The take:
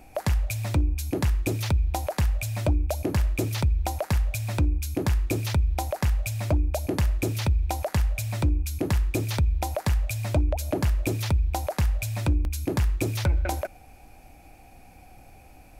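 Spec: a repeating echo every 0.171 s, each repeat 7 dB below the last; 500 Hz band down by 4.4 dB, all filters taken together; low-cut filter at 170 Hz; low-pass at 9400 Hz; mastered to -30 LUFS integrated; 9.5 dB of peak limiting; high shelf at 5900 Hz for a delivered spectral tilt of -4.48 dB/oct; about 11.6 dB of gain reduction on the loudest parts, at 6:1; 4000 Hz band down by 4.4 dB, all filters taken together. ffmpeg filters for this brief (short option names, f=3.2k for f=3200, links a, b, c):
-af "highpass=170,lowpass=9.4k,equalizer=f=500:t=o:g=-6,equalizer=f=4k:t=o:g=-7.5,highshelf=f=5.9k:g=5,acompressor=threshold=-39dB:ratio=6,alimiter=level_in=8.5dB:limit=-24dB:level=0:latency=1,volume=-8.5dB,aecho=1:1:171|342|513|684|855:0.447|0.201|0.0905|0.0407|0.0183,volume=15.5dB"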